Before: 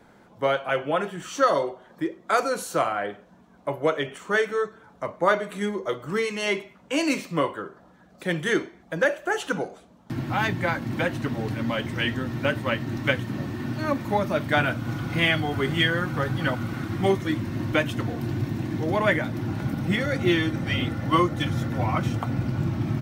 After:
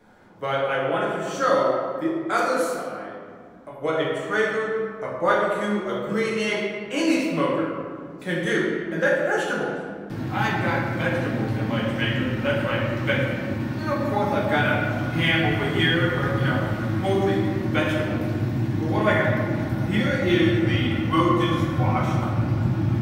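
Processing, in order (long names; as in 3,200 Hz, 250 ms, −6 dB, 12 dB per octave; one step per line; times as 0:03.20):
0:02.65–0:03.81: downward compressor 4 to 1, threshold −37 dBFS, peak gain reduction 15.5 dB
flanger 0.44 Hz, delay 9.4 ms, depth 10 ms, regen −73%
convolution reverb RT60 1.9 s, pre-delay 5 ms, DRR −5 dB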